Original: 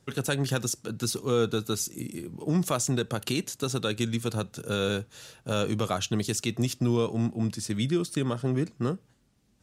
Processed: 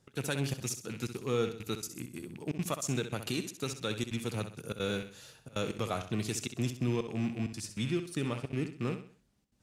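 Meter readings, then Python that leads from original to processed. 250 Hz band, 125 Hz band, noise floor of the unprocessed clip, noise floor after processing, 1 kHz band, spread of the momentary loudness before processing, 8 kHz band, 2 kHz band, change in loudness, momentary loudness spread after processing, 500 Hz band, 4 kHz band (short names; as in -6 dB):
-6.5 dB, -6.5 dB, -66 dBFS, -69 dBFS, -6.5 dB, 6 LU, -7.5 dB, -4.5 dB, -6.5 dB, 7 LU, -6.5 dB, -6.5 dB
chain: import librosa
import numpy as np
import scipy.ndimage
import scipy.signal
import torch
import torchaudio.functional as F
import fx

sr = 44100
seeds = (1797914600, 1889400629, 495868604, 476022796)

y = fx.rattle_buzz(x, sr, strikes_db=-35.0, level_db=-29.0)
y = fx.step_gate(y, sr, bpm=197, pattern='x.xxxxx.xx.xx', floor_db=-24.0, edge_ms=4.5)
y = fx.echo_feedback(y, sr, ms=65, feedback_pct=37, wet_db=-10.0)
y = F.gain(torch.from_numpy(y), -6.0).numpy()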